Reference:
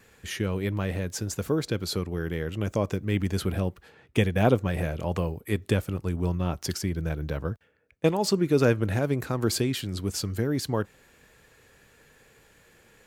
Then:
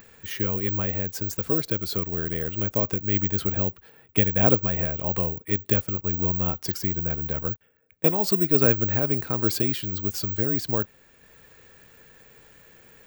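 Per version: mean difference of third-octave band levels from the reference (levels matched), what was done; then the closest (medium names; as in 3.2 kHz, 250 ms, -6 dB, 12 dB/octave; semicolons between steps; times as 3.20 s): 1.5 dB: treble shelf 10 kHz -6.5 dB; upward compressor, threshold -47 dBFS; careless resampling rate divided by 2×, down filtered, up zero stuff; trim -1 dB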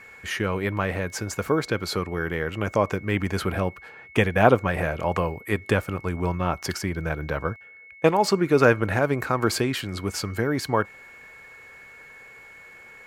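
3.5 dB: peaking EQ 1.2 kHz +12 dB 2.4 oct; whistle 2.2 kHz -44 dBFS; peaking EQ 3.5 kHz -3.5 dB 0.23 oct; trim -1 dB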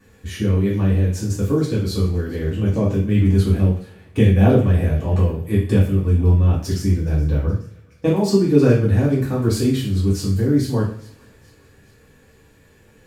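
6.5 dB: bass shelf 340 Hz +11.5 dB; on a send: feedback echo behind a high-pass 422 ms, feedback 52%, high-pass 1.6 kHz, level -20 dB; on the sum: two-slope reverb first 0.46 s, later 2.2 s, from -27 dB, DRR -8 dB; trim -8 dB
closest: first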